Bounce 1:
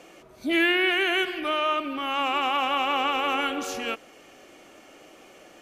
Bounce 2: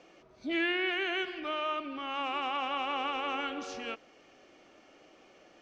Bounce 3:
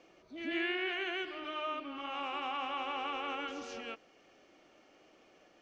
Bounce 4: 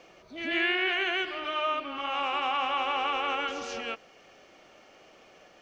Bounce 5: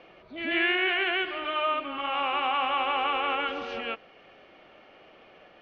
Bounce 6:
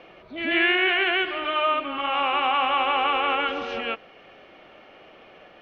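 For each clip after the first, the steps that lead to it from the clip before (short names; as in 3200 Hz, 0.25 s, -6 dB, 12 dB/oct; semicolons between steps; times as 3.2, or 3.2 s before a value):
Chebyshev low-pass 5600 Hz, order 3; gain -8 dB
reverse echo 0.135 s -7 dB; gain -5 dB
bell 300 Hz -7.5 dB 0.67 oct; gain +9 dB
LPF 3600 Hz 24 dB/oct; gain +2 dB
notch 4600 Hz, Q 21; gain +4.5 dB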